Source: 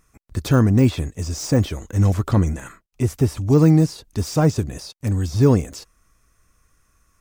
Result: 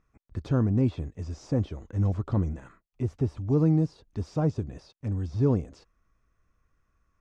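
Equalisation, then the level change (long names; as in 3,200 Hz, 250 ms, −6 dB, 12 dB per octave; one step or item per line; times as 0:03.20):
dynamic equaliser 1,900 Hz, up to −6 dB, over −43 dBFS, Q 1.2
high-frequency loss of the air 96 metres
high-shelf EQ 3,200 Hz −9.5 dB
−8.5 dB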